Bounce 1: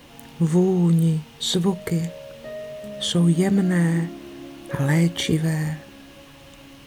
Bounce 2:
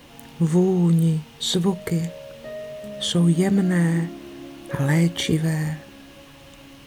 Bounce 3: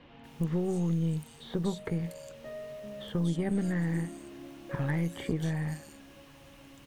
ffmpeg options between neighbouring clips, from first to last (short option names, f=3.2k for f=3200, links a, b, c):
-af anull
-filter_complex "[0:a]acrossover=split=2000|7000[a][b][c];[a]acompressor=threshold=-19dB:ratio=4[d];[b]acompressor=threshold=-41dB:ratio=4[e];[c]acompressor=threshold=-50dB:ratio=4[f];[d][e][f]amix=inputs=3:normalize=0,acrossover=split=3700[g][h];[h]adelay=240[i];[g][i]amix=inputs=2:normalize=0,aeval=exprs='0.282*(cos(1*acos(clip(val(0)/0.282,-1,1)))-cos(1*PI/2))+0.0224*(cos(4*acos(clip(val(0)/0.282,-1,1)))-cos(4*PI/2))':c=same,volume=-7.5dB"